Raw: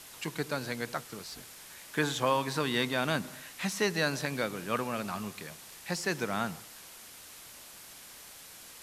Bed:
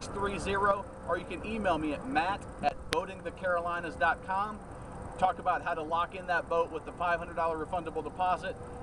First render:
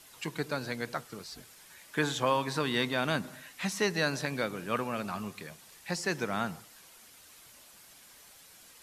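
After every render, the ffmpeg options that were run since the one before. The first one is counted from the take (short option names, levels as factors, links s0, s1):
-af "afftdn=nr=7:nf=-50"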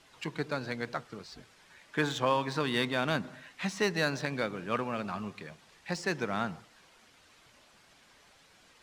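-af "adynamicsmooth=sensitivity=6.5:basefreq=4600"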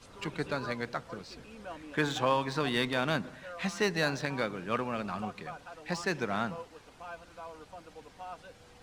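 -filter_complex "[1:a]volume=0.188[s0];[0:a][s0]amix=inputs=2:normalize=0"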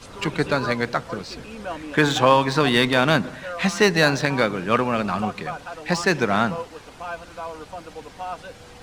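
-af "volume=3.98,alimiter=limit=0.708:level=0:latency=1"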